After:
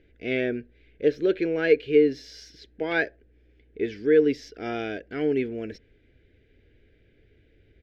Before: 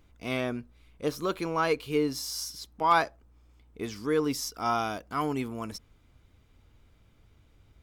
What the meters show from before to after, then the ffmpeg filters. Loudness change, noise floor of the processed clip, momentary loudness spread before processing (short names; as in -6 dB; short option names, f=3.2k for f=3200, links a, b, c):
+5.0 dB, -61 dBFS, 13 LU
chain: -af "firequalizer=gain_entry='entry(190,0);entry(410,13);entry(1100,-26);entry(1600,9);entry(9300,-29);entry(14000,-27)':delay=0.05:min_phase=1,volume=-1dB"